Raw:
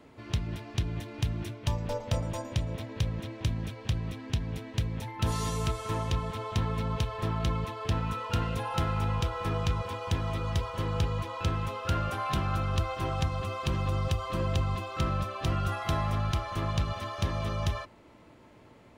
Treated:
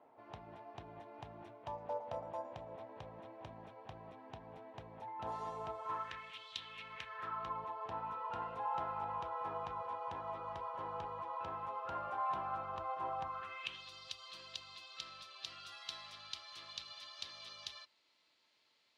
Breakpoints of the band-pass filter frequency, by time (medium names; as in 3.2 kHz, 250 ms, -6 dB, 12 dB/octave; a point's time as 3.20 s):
band-pass filter, Q 3
5.78 s 780 Hz
6.50 s 4 kHz
7.60 s 880 Hz
13.23 s 880 Hz
13.85 s 4.3 kHz